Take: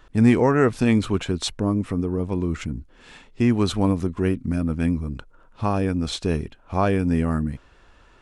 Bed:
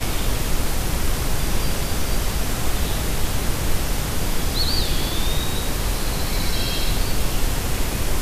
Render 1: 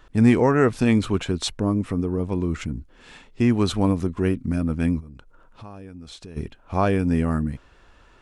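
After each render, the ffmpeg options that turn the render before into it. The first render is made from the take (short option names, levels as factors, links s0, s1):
-filter_complex "[0:a]asplit=3[s0][s1][s2];[s0]afade=t=out:st=4.99:d=0.02[s3];[s1]acompressor=threshold=0.00794:ratio=3:attack=3.2:release=140:knee=1:detection=peak,afade=t=in:st=4.99:d=0.02,afade=t=out:st=6.36:d=0.02[s4];[s2]afade=t=in:st=6.36:d=0.02[s5];[s3][s4][s5]amix=inputs=3:normalize=0"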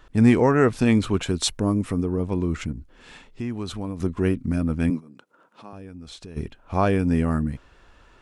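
-filter_complex "[0:a]asettb=1/sr,asplit=3[s0][s1][s2];[s0]atrim=end=1.234[s3];[s1]atrim=start=1.23:end=2.03,asetpts=PTS-STARTPTS,afade=t=in:d=0.004:c=qsin,afade=t=out:st=0.796:d=0.004:c=qsin,highshelf=f=6600:g=9.5[s4];[s2]atrim=start=2.026[s5];[s3][s4]acrossfade=d=0.004:c1=hsin:c2=qsin[s6];[s6][s5]acrossfade=d=0.004:c1=qsin:c2=hsin,asettb=1/sr,asplit=3[s7][s8][s9];[s7]atrim=end=2.724[s10];[s8]atrim=start=2.72:end=4,asetpts=PTS-STARTPTS,afade=t=in:d=0.004:c=qsin,afade=t=out:st=1.276:d=0.004:c=qsin,acompressor=threshold=0.02:ratio=2:attack=3.2:release=140:knee=1:detection=peak[s11];[s9]atrim=start=3.996[s12];[s10][s11]acrossfade=d=0.004:c1=hsin:c2=qsin[s13];[s13][s12]acrossfade=d=0.004:c1=qsin:c2=hsin,asettb=1/sr,asplit=3[s14][s15][s16];[s14]atrim=end=4.904[s17];[s15]atrim=start=4.9:end=5.73,asetpts=PTS-STARTPTS,afade=t=in:d=0.004:c=qsin,afade=t=out:st=0.826:d=0.004:c=qsin,highpass=f=180:w=0.5412,highpass=f=180:w=1.3066[s18];[s16]atrim=start=5.726[s19];[s17][s18]acrossfade=d=0.004:c1=hsin:c2=qsin[s20];[s20][s19]acrossfade=d=0.004:c1=qsin:c2=hsin"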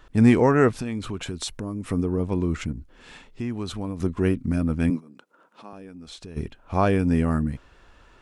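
-filter_complex "[0:a]asplit=3[s0][s1][s2];[s0]afade=t=out:st=0.71:d=0.02[s3];[s1]acompressor=threshold=0.0355:ratio=3:attack=3.2:release=140:knee=1:detection=peak,afade=t=in:st=0.71:d=0.02,afade=t=out:st=1.87:d=0.02[s4];[s2]afade=t=in:st=1.87:d=0.02[s5];[s3][s4][s5]amix=inputs=3:normalize=0,asettb=1/sr,asplit=3[s6][s7][s8];[s6]atrim=end=4.964[s9];[s7]atrim=start=4.96:end=6.18,asetpts=PTS-STARTPTS,afade=t=in:d=0.004:c=qsin,afade=t=out:st=1.216:d=0.004:c=qsin,equalizer=f=97:t=o:w=0.77:g=-11.5[s10];[s8]atrim=start=6.176[s11];[s9][s10]acrossfade=d=0.004:c1=hsin:c2=qsin[s12];[s12][s11]acrossfade=d=0.004:c1=qsin:c2=hsin"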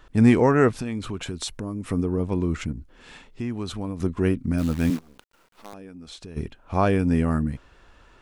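-filter_complex "[0:a]asettb=1/sr,asplit=3[s0][s1][s2];[s0]atrim=end=4.584[s3];[s1]atrim=start=4.58:end=5.74,asetpts=PTS-STARTPTS,afade=t=in:d=0.004:c=qsin,afade=t=out:st=1.156:d=0.004:c=qsin,acrusher=bits=7:dc=4:mix=0:aa=0.000001[s4];[s2]atrim=start=5.736[s5];[s3][s4]acrossfade=d=0.004:c1=hsin:c2=qsin[s6];[s6][s5]acrossfade=d=0.004:c1=qsin:c2=hsin"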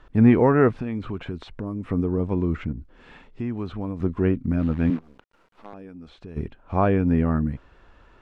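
-filter_complex "[0:a]acrossover=split=3400[s0][s1];[s1]acompressor=threshold=0.00112:ratio=4:attack=1:release=60[s2];[s0][s2]amix=inputs=2:normalize=0,aemphasis=mode=reproduction:type=75fm"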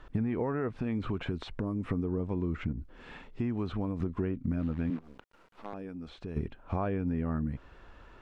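-af "alimiter=limit=0.2:level=0:latency=1:release=240,acompressor=threshold=0.0398:ratio=5"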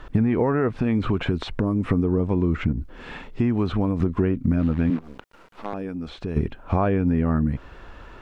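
-af "volume=3.35"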